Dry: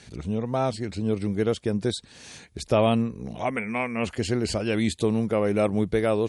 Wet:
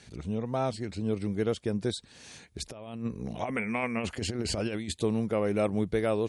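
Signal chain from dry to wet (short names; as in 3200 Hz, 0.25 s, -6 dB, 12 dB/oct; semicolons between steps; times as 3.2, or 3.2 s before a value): 2.6–4.92 negative-ratio compressor -27 dBFS, ratio -0.5; gain -4.5 dB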